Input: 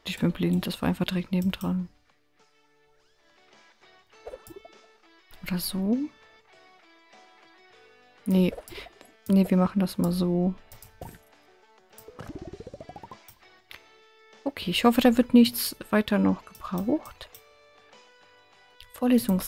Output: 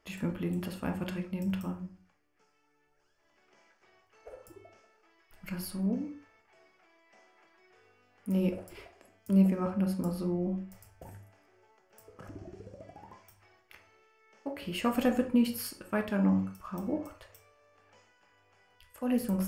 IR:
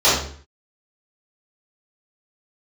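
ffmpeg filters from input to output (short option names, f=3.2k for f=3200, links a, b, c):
-filter_complex "[0:a]equalizer=f=3.8k:t=o:w=0.3:g=-14.5,asplit=2[a][b];[1:a]atrim=start_sample=2205,asetrate=61740,aresample=44100[c];[b][c]afir=irnorm=-1:irlink=0,volume=-24.5dB[d];[a][d]amix=inputs=2:normalize=0,volume=-8.5dB"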